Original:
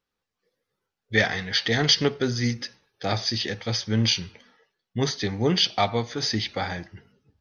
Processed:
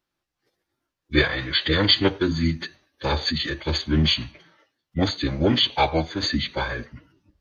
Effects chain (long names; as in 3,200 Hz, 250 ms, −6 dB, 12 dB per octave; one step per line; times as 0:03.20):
phase-vocoder pitch shift with formants kept −6.5 semitones
level +3 dB